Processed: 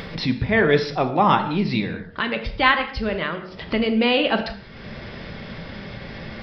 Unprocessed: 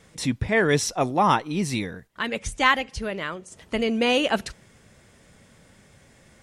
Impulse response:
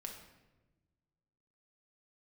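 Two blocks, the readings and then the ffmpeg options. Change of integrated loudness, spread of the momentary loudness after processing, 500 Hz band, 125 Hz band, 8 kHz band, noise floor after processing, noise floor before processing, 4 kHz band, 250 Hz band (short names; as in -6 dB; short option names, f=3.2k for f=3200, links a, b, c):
+3.0 dB, 17 LU, +3.0 dB, +3.5 dB, under -20 dB, -40 dBFS, -56 dBFS, +3.0 dB, +4.0 dB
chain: -filter_complex "[0:a]acompressor=mode=upward:threshold=-22dB:ratio=2.5,aresample=11025,aresample=44100,bandreject=f=91.77:t=h:w=4,bandreject=f=183.54:t=h:w=4,bandreject=f=275.31:t=h:w=4,bandreject=f=367.08:t=h:w=4,bandreject=f=458.85:t=h:w=4,bandreject=f=550.62:t=h:w=4,bandreject=f=642.39:t=h:w=4,bandreject=f=734.16:t=h:w=4,bandreject=f=825.93:t=h:w=4,bandreject=f=917.7:t=h:w=4,bandreject=f=1.00947k:t=h:w=4,bandreject=f=1.10124k:t=h:w=4,bandreject=f=1.19301k:t=h:w=4,bandreject=f=1.28478k:t=h:w=4,bandreject=f=1.37655k:t=h:w=4,bandreject=f=1.46832k:t=h:w=4,bandreject=f=1.56009k:t=h:w=4,bandreject=f=1.65186k:t=h:w=4,bandreject=f=1.74363k:t=h:w=4,bandreject=f=1.8354k:t=h:w=4,asplit=2[a][b];[1:a]atrim=start_sample=2205,afade=t=out:st=0.26:d=0.01,atrim=end_sample=11907[c];[b][c]afir=irnorm=-1:irlink=0,volume=5dB[d];[a][d]amix=inputs=2:normalize=0,volume=-3.5dB"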